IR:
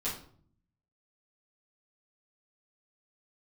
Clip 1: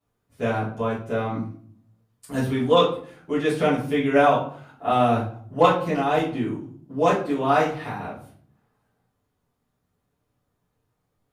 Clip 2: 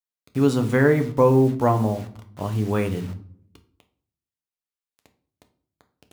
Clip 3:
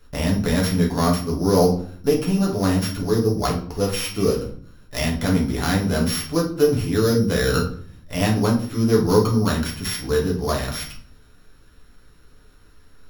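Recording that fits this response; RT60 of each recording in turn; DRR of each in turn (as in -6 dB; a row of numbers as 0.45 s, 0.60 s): 1; 0.55 s, 0.55 s, 0.55 s; -11.5 dB, 6.5 dB, -2.0 dB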